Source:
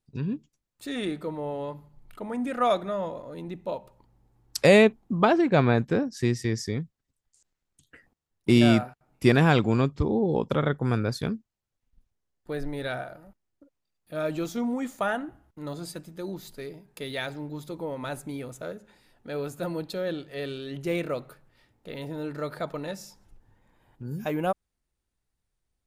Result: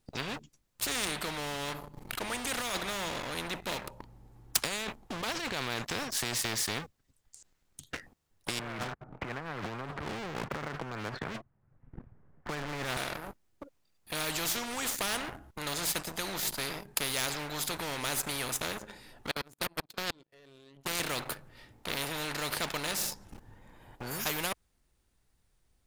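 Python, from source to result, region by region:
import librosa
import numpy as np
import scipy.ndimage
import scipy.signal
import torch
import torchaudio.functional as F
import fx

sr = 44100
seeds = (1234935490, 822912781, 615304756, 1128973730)

y = fx.chain(x, sr, fx.lowpass(hz=1700.0, slope=24),
    fx.peak_eq(hz=140.0, db=11.0, octaves=1.3),
    fx.band_squash(depth_pct=40), at=(8.59, 12.97))
y = fx.chain(y, sr, fx.level_steps(step_db=15),
    fx.power_curve(exponent=2.0), at=(19.31, 21.0))
y = fx.over_compress(y, sr, threshold_db=-26.0, ratio=-1.0)
y = fx.leveller(y, sr, passes=2)
y = fx.spectral_comp(y, sr, ratio=4.0)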